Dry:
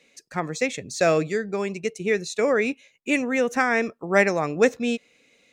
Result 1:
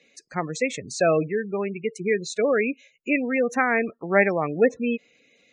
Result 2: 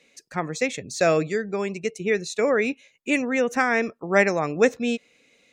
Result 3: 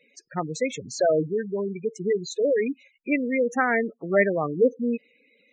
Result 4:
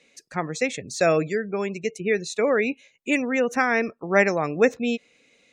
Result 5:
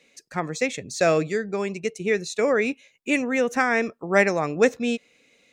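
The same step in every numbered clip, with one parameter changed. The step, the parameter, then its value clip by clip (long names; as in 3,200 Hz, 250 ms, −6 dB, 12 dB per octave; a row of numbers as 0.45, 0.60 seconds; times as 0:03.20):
gate on every frequency bin, under each frame's peak: −20, −45, −10, −35, −60 decibels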